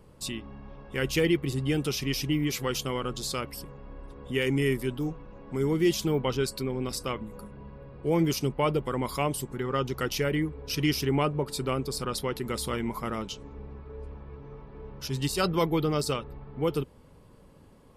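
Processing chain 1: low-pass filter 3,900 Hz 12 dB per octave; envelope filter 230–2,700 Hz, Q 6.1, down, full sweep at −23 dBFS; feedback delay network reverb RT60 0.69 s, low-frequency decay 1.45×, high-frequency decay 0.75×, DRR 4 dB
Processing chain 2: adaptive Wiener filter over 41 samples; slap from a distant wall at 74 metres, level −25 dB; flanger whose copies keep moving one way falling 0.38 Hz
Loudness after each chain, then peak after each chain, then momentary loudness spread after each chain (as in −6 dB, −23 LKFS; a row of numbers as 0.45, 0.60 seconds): −37.0, −36.0 LKFS; −19.0, −19.0 dBFS; 12, 17 LU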